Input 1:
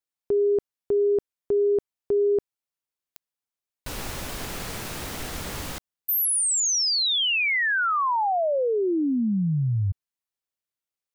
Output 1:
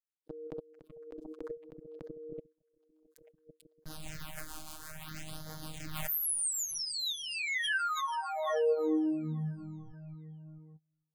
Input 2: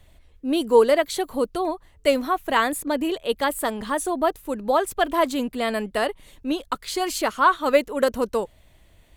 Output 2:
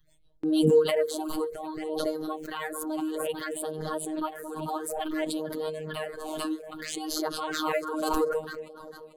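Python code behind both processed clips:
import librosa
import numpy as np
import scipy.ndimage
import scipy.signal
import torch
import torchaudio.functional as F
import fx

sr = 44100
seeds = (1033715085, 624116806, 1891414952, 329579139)

y = fx.rotary(x, sr, hz=6.3)
y = fx.noise_reduce_blind(y, sr, reduce_db=18)
y = fx.peak_eq(y, sr, hz=1500.0, db=4.0, octaves=0.32)
y = fx.notch(y, sr, hz=5600.0, q=15.0)
y = fx.echo_alternate(y, sr, ms=222, hz=920.0, feedback_pct=68, wet_db=-10.5)
y = fx.robotise(y, sr, hz=156.0)
y = fx.phaser_stages(y, sr, stages=6, low_hz=130.0, high_hz=2600.0, hz=0.59, feedback_pct=5)
y = fx.dynamic_eq(y, sr, hz=450.0, q=1.9, threshold_db=-41.0, ratio=6.0, max_db=6)
y = fx.gate_hold(y, sr, open_db=-42.0, close_db=-45.0, hold_ms=104.0, range_db=-25, attack_ms=0.17, release_ms=39.0)
y = fx.pre_swell(y, sr, db_per_s=30.0)
y = y * 10.0 ** (-5.5 / 20.0)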